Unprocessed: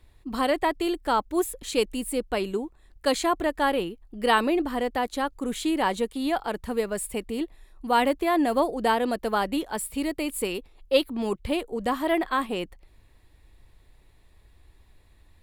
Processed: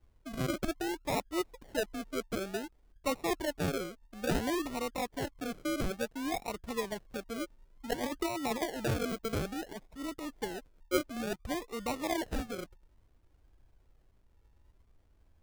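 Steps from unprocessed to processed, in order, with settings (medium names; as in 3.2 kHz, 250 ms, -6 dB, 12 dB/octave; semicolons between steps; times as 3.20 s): low-pass 1.8 kHz 12 dB/octave; 7.93–8.62 s: compressor with a negative ratio -25 dBFS, ratio -0.5; 9.33–10.34 s: transient shaper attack -11 dB, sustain +2 dB; decimation with a swept rate 38×, swing 60% 0.57 Hz; trim -8.5 dB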